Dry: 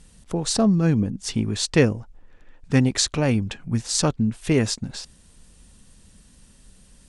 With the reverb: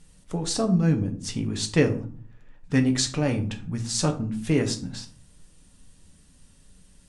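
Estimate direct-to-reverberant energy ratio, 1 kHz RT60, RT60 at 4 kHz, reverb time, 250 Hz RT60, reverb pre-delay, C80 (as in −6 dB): 4.5 dB, 0.45 s, 0.30 s, 0.45 s, 0.70 s, 6 ms, 17.0 dB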